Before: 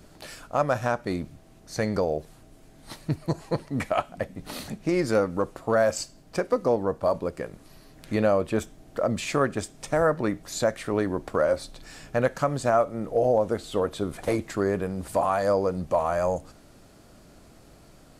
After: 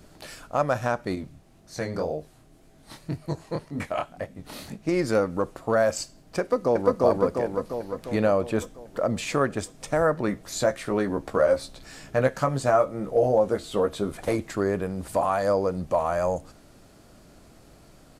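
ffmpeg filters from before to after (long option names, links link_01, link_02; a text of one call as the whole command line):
ffmpeg -i in.wav -filter_complex "[0:a]asettb=1/sr,asplit=3[link_01][link_02][link_03];[link_01]atrim=end=1.154[link_04];[link_02]atrim=start=1.15:end=4.88,asetpts=PTS-STARTPTS,afade=type=in:duration=0.004:curve=qsin,afade=type=out:start_time=3.726:duration=0.004:curve=qsin,flanger=delay=19.5:depth=7.3:speed=1.9[link_05];[link_03]atrim=start=4.876[link_06];[link_04][link_05]acrossfade=duration=0.004:curve1=hsin:curve2=qsin[link_07];[link_07][link_06]acrossfade=duration=0.004:curve1=qsin:curve2=hsin,asplit=2[link_08][link_09];[link_09]afade=type=in:start_time=6.4:duration=0.01,afade=type=out:start_time=7.03:duration=0.01,aecho=0:1:350|700|1050|1400|1750|2100|2450|2800|3150|3500:1|0.6|0.36|0.216|0.1296|0.07776|0.046656|0.0279936|0.0167962|0.0100777[link_10];[link_08][link_10]amix=inputs=2:normalize=0,asettb=1/sr,asplit=3[link_11][link_12][link_13];[link_11]atrim=end=10.274[link_14];[link_12]atrim=start=10.27:end=14.11,asetpts=PTS-STARTPTS,afade=type=in:duration=0.004:curve=qsin,afade=type=out:start_time=3.836:duration=0.004:curve=qsin,asplit=2[link_15][link_16];[link_16]adelay=15,volume=-6dB[link_17];[link_15][link_17]amix=inputs=2:normalize=0,atrim=end_sample=169344[link_18];[link_13]atrim=start=14.106[link_19];[link_14][link_18]acrossfade=duration=0.004:curve1=hsin:curve2=qsin[link_20];[link_20][link_19]acrossfade=duration=0.004:curve1=qsin:curve2=hsin" out.wav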